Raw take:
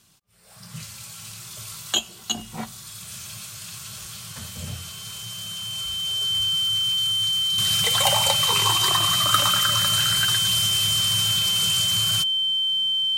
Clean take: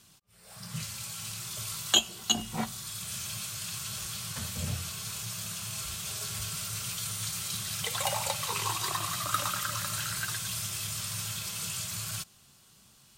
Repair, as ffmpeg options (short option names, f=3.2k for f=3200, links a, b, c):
-af "bandreject=f=3.1k:w=30,asetnsamples=n=441:p=0,asendcmd='7.58 volume volume -9dB',volume=0dB"